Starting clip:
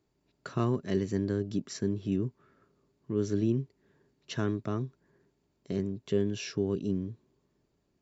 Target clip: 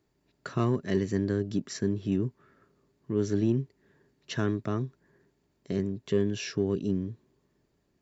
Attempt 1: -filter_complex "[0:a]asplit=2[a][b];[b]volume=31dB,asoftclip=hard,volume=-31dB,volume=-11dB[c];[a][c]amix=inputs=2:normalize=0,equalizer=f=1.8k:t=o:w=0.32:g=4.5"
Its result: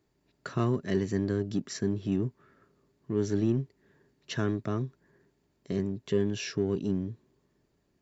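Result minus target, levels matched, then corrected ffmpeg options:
overloaded stage: distortion +13 dB
-filter_complex "[0:a]asplit=2[a][b];[b]volume=21.5dB,asoftclip=hard,volume=-21.5dB,volume=-11dB[c];[a][c]amix=inputs=2:normalize=0,equalizer=f=1.8k:t=o:w=0.32:g=4.5"

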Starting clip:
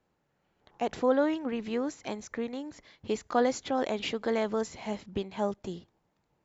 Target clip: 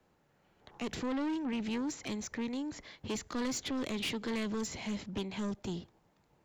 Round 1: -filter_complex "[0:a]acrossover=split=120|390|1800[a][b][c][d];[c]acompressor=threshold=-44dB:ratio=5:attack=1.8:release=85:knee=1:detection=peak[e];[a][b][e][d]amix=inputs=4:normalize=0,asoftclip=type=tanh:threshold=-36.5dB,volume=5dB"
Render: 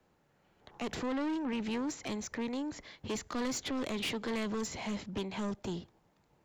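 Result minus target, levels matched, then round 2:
compressor: peak gain reduction -8 dB
-filter_complex "[0:a]acrossover=split=120|390|1800[a][b][c][d];[c]acompressor=threshold=-54dB:ratio=5:attack=1.8:release=85:knee=1:detection=peak[e];[a][b][e][d]amix=inputs=4:normalize=0,asoftclip=type=tanh:threshold=-36.5dB,volume=5dB"

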